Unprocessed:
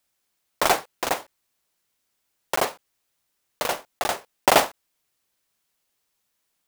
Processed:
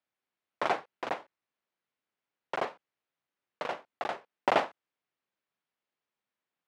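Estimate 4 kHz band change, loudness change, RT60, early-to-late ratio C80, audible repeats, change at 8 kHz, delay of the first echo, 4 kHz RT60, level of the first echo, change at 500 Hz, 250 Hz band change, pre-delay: −14.5 dB, −9.5 dB, no reverb audible, no reverb audible, no echo audible, −27.0 dB, no echo audible, no reverb audible, no echo audible, −8.0 dB, −8.5 dB, no reverb audible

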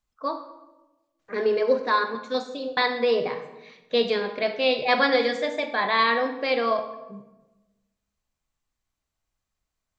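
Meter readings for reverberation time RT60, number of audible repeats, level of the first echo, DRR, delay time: 1.1 s, no echo audible, no echo audible, 8.0 dB, no echo audible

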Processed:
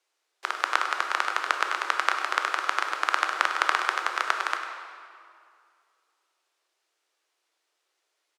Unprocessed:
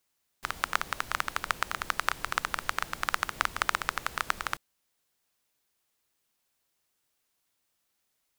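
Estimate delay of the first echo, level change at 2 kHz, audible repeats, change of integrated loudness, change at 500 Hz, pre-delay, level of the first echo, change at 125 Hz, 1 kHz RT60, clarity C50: 100 ms, +5.5 dB, 1, +5.5 dB, +6.0 dB, 13 ms, −11.5 dB, below −40 dB, 2.3 s, 5.0 dB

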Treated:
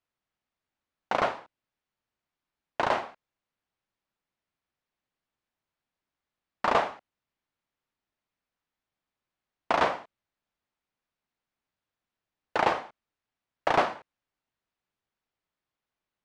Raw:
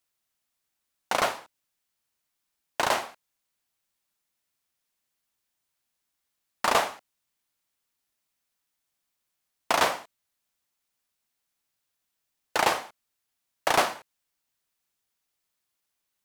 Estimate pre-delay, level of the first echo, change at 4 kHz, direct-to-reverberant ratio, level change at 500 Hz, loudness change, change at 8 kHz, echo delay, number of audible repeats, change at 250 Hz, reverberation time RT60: no reverb audible, no echo audible, −7.5 dB, no reverb audible, +0.5 dB, −1.5 dB, −16.5 dB, no echo audible, no echo audible, +1.0 dB, no reverb audible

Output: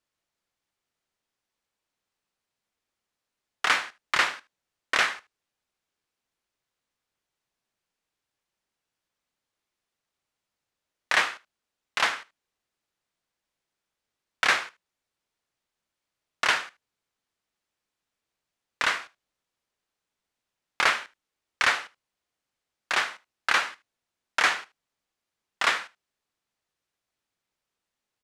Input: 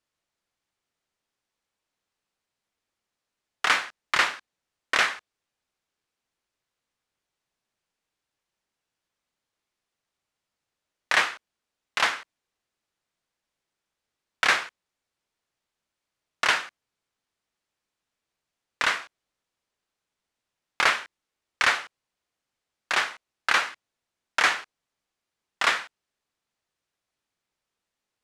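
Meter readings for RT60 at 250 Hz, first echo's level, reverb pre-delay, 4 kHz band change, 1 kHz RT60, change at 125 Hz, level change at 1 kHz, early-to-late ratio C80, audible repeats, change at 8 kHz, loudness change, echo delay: no reverb audible, −21.0 dB, no reverb audible, −1.0 dB, no reverb audible, can't be measured, −1.0 dB, no reverb audible, 1, −1.0 dB, −1.0 dB, 76 ms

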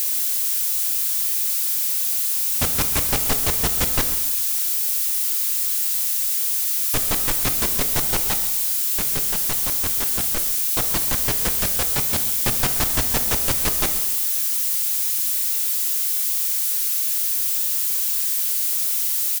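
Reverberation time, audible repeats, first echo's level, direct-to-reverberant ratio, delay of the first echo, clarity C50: 1.2 s, 1, −16.0 dB, 7.5 dB, 133 ms, 9.5 dB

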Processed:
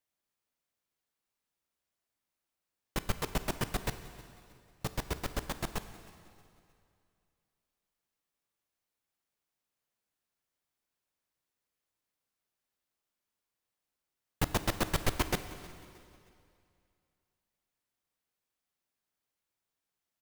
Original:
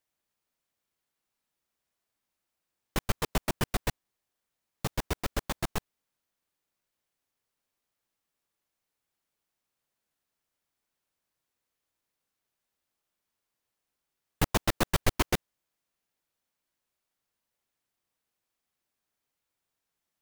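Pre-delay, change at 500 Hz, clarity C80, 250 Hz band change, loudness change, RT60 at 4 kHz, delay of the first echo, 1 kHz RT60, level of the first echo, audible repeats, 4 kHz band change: 7 ms, −3.5 dB, 12.0 dB, −3.5 dB, −4.0 dB, 2.2 s, 313 ms, 2.4 s, −22.0 dB, 2, −3.5 dB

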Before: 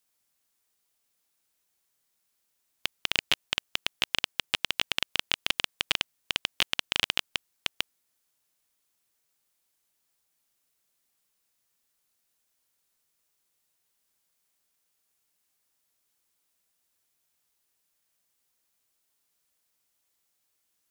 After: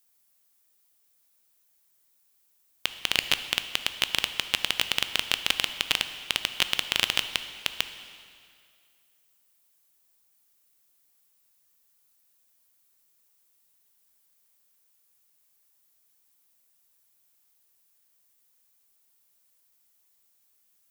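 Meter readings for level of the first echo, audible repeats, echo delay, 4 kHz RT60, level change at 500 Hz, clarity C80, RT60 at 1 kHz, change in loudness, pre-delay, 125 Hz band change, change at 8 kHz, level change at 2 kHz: no echo audible, no echo audible, no echo audible, 2.1 s, +2.0 dB, 11.5 dB, 2.2 s, +2.5 dB, 6 ms, +2.0 dB, +4.5 dB, +2.0 dB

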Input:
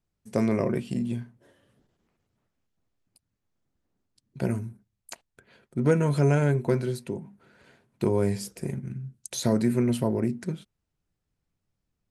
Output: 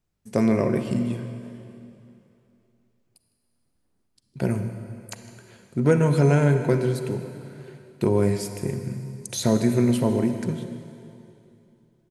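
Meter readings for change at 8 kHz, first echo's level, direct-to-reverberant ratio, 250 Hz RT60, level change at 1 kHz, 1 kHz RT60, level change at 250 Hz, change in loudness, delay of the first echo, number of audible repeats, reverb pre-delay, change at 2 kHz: +3.5 dB, −18.0 dB, 7.5 dB, 2.9 s, +4.0 dB, 2.8 s, +4.0 dB, +3.5 dB, 157 ms, 1, 31 ms, +3.5 dB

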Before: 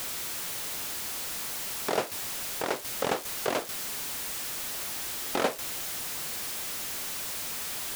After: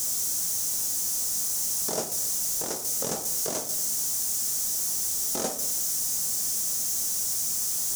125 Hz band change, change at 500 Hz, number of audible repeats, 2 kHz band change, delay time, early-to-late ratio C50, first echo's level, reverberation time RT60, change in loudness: +1.5 dB, −4.0 dB, no echo audible, −10.5 dB, no echo audible, 9.5 dB, no echo audible, 0.70 s, +6.5 dB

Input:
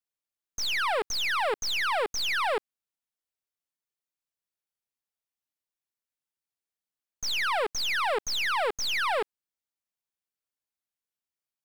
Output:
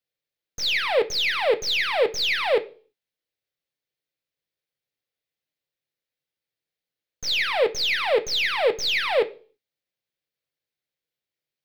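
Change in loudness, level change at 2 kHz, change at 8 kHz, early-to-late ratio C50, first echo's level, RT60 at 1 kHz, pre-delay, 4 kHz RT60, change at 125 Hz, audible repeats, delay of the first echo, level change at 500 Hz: +5.0 dB, +4.0 dB, −0.5 dB, 18.0 dB, no echo audible, 0.35 s, 3 ms, 0.45 s, can't be measured, no echo audible, no echo audible, +9.0 dB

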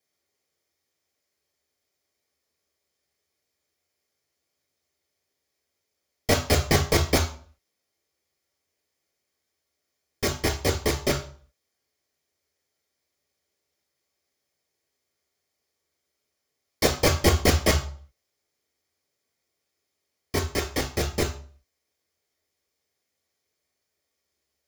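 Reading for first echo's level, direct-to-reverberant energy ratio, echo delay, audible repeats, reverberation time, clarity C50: no echo audible, 3.0 dB, no echo audible, no echo audible, 0.45 s, 11.0 dB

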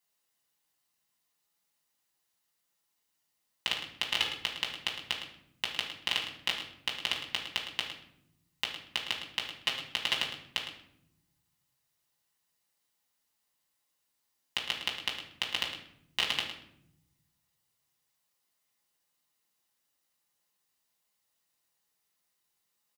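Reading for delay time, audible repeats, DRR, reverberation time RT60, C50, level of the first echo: 109 ms, 1, −2.5 dB, 0.75 s, 5.5 dB, −10.5 dB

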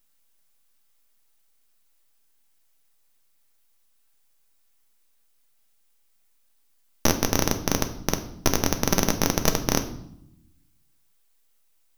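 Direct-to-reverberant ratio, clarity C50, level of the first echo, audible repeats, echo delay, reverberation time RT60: 6.0 dB, 12.0 dB, no echo audible, no echo audible, no echo audible, 0.80 s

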